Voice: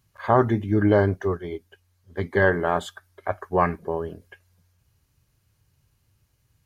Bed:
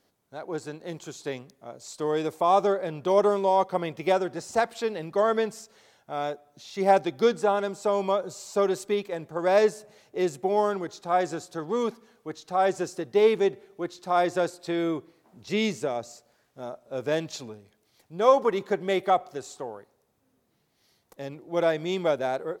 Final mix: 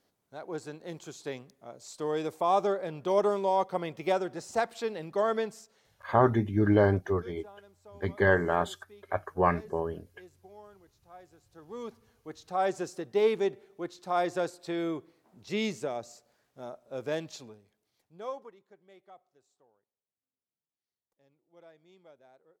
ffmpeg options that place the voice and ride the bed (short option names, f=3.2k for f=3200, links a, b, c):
-filter_complex "[0:a]adelay=5850,volume=-4dB[a];[1:a]volume=18dB,afade=t=out:st=5.33:d=0.94:silence=0.0707946,afade=t=in:st=11.43:d=1.13:silence=0.0749894,afade=t=out:st=16.94:d=1.62:silence=0.0473151[b];[a][b]amix=inputs=2:normalize=0"